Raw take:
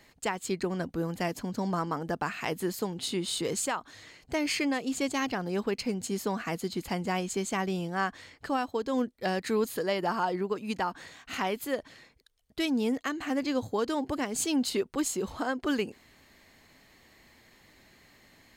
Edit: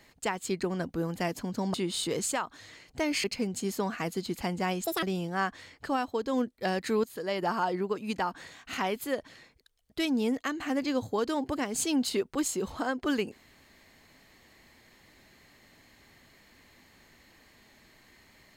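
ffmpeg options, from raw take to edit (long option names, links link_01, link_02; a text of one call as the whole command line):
ffmpeg -i in.wav -filter_complex "[0:a]asplit=6[link_01][link_02][link_03][link_04][link_05][link_06];[link_01]atrim=end=1.742[link_07];[link_02]atrim=start=3.078:end=4.582[link_08];[link_03]atrim=start=5.708:end=7.314[link_09];[link_04]atrim=start=7.31:end=7.63,asetpts=PTS-STARTPTS,asetrate=75411,aresample=44100[link_10];[link_05]atrim=start=7.626:end=9.64,asetpts=PTS-STARTPTS,afade=type=out:start_time=2.01:duration=0.004:curve=hsin:silence=0.211349[link_11];[link_06]atrim=start=9.64,asetpts=PTS-STARTPTS,afade=type=in:duration=0.4:silence=0.211349[link_12];[link_07][link_08]acrossfade=duration=0.004:curve1=hsin:curve2=hsin[link_13];[link_13][link_09]acrossfade=duration=0.004:curve1=hsin:curve2=hsin[link_14];[link_14][link_10]acrossfade=duration=0.004:curve1=hsin:curve2=hsin[link_15];[link_11][link_12]concat=n=2:v=0:a=1[link_16];[link_15][link_16]acrossfade=duration=0.004:curve1=hsin:curve2=hsin" out.wav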